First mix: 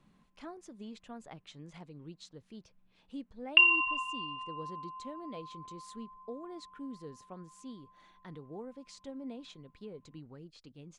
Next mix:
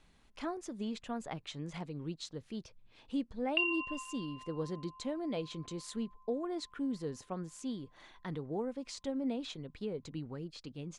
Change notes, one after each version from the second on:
speech +7.5 dB; background -10.5 dB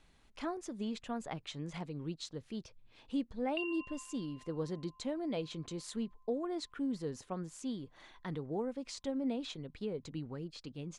background -9.5 dB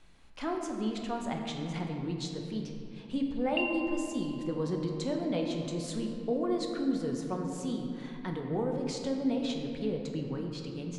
background +6.0 dB; reverb: on, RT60 2.6 s

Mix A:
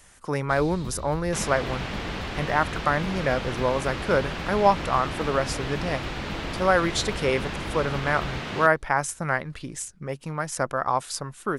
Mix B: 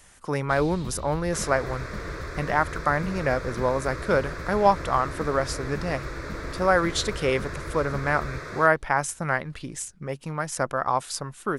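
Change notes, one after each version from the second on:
second sound: add fixed phaser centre 800 Hz, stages 6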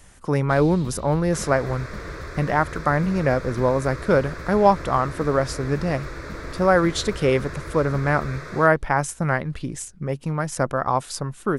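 speech: add low shelf 500 Hz +8.5 dB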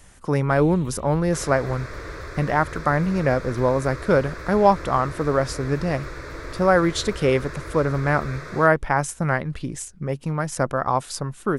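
first sound: add fixed phaser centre 1000 Hz, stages 8

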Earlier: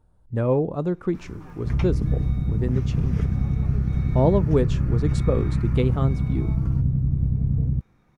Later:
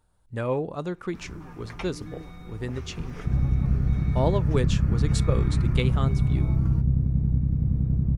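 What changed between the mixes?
speech: add tilt shelf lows -8 dB, about 1100 Hz; second sound: entry +1.60 s

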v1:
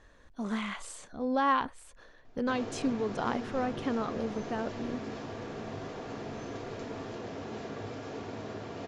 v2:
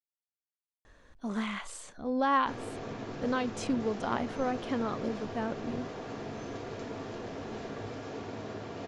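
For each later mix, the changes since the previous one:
speech: entry +0.85 s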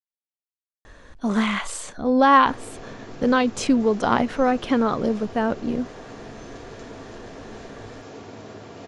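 speech +12.0 dB; background: remove air absorption 65 m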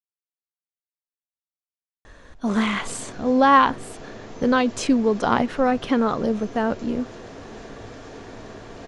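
speech: entry +1.20 s

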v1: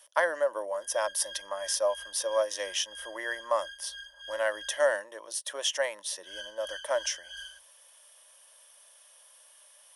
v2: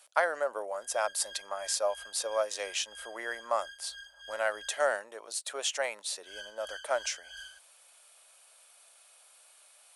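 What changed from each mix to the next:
master: remove ripple EQ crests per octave 1.2, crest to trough 10 dB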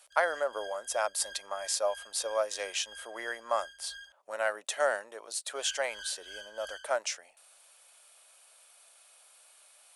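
background: entry -0.70 s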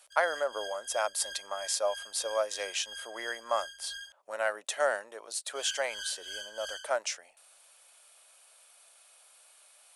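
background: add high shelf 3200 Hz +11.5 dB

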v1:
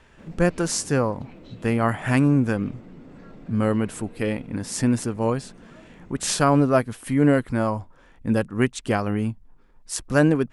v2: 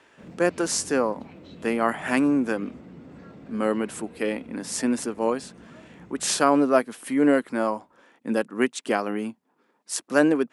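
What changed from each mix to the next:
speech: add HPF 240 Hz 24 dB/oct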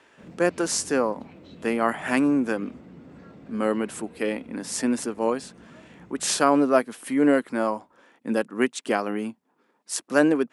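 reverb: off

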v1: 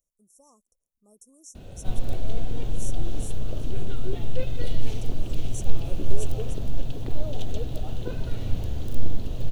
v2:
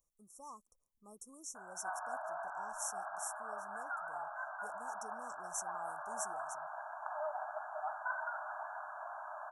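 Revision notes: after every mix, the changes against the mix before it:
background: add brick-wall FIR band-pass 590–1700 Hz; master: add band shelf 1400 Hz +12.5 dB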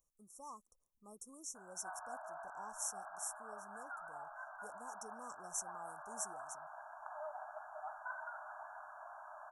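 background -6.5 dB

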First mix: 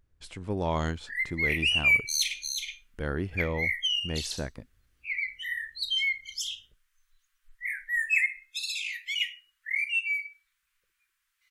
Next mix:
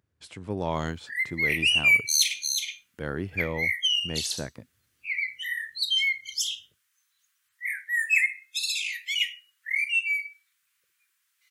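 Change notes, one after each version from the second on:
background: add high shelf 3400 Hz +8 dB; master: add HPF 89 Hz 24 dB/oct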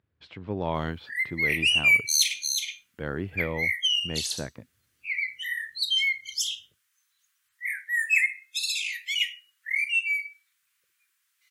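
speech: add LPF 4000 Hz 24 dB/oct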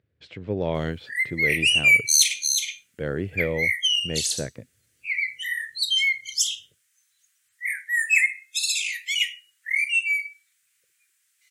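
master: add graphic EQ 125/500/1000/2000/8000 Hz +5/+8/-8/+4/+9 dB

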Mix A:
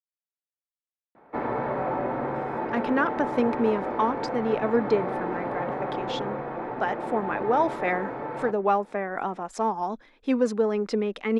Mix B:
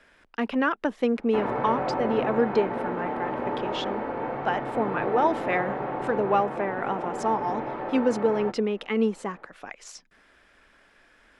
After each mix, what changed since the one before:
speech: entry -2.35 s; master: add bell 2900 Hz +6.5 dB 0.24 oct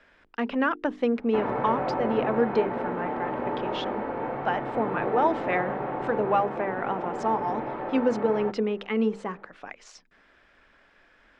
speech: add notches 50/100/150/200/250/300/350/400/450 Hz; master: add air absorption 100 m

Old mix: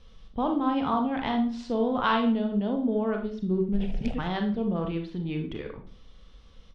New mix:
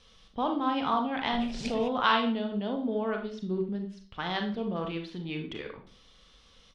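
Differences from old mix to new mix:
background: entry -2.40 s; master: add tilt +2.5 dB/oct

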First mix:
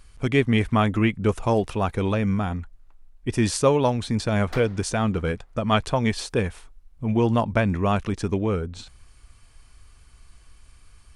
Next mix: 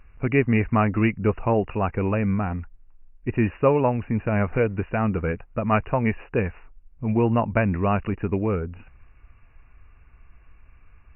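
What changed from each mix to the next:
background -11.0 dB; master: add brick-wall FIR low-pass 2900 Hz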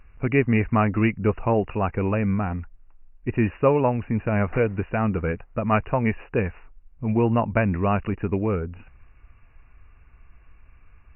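background +8.0 dB

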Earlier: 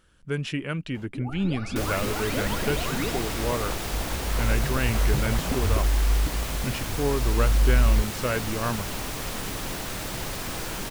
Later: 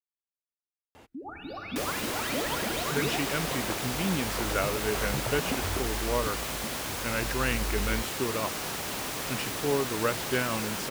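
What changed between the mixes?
speech: entry +2.65 s; master: add HPF 240 Hz 6 dB/oct

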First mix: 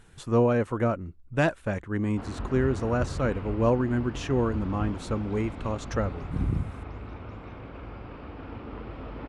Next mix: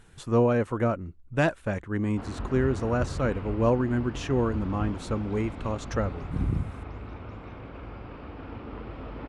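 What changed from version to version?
none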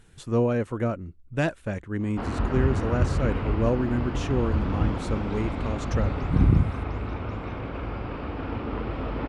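speech: add bell 1000 Hz -4.5 dB 1.5 oct; background +8.5 dB

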